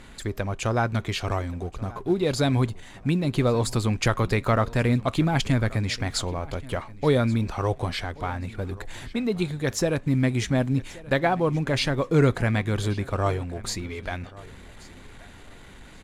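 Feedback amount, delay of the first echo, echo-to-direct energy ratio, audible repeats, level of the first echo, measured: 24%, 1130 ms, -20.5 dB, 2, -20.5 dB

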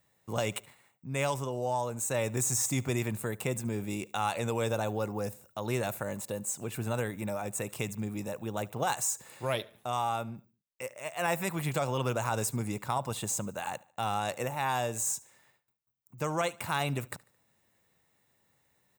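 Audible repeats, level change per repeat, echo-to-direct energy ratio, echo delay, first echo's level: 2, -7.5 dB, -22.0 dB, 73 ms, -23.0 dB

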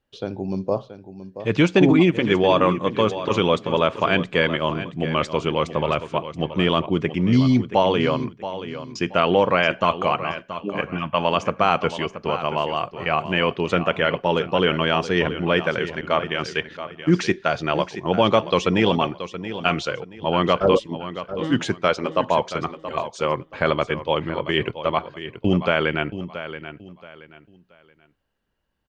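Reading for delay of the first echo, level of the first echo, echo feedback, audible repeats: 677 ms, -12.0 dB, 28%, 3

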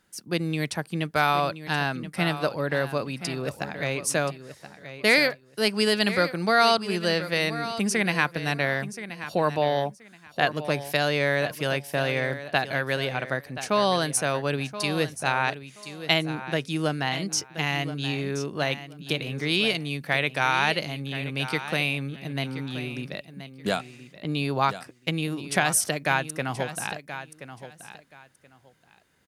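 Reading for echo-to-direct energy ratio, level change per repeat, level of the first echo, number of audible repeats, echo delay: -12.5 dB, -14.0 dB, -12.5 dB, 2, 1027 ms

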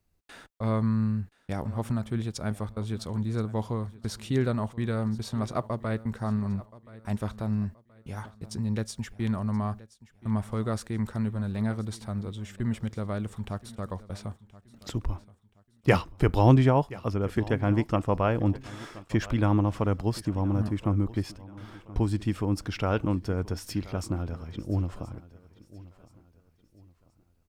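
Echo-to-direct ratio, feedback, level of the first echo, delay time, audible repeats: -18.5 dB, 35%, -19.0 dB, 1026 ms, 2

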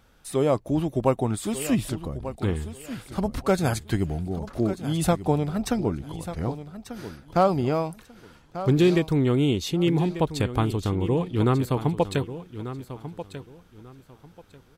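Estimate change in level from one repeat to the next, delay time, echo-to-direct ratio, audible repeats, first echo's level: -13.0 dB, 1191 ms, -12.5 dB, 2, -12.5 dB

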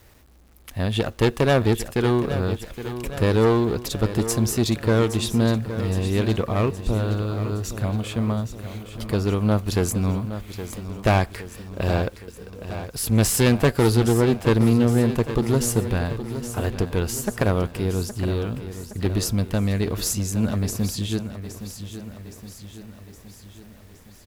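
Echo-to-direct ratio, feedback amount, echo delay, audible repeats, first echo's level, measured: -10.0 dB, 56%, 817 ms, 5, -11.5 dB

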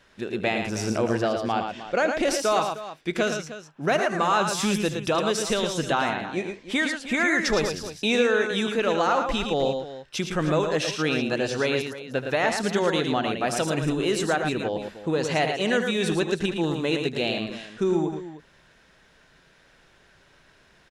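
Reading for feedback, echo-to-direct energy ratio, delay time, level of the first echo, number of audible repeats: no regular repeats, -4.5 dB, 78 ms, -13.5 dB, 3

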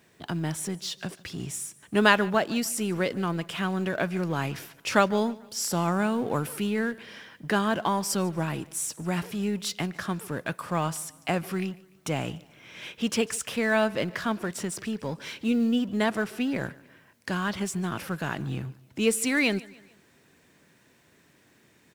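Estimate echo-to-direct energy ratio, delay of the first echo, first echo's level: -21.0 dB, 147 ms, -22.0 dB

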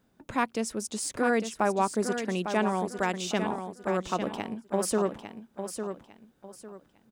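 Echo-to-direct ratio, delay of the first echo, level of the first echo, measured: -7.5 dB, 852 ms, -8.0 dB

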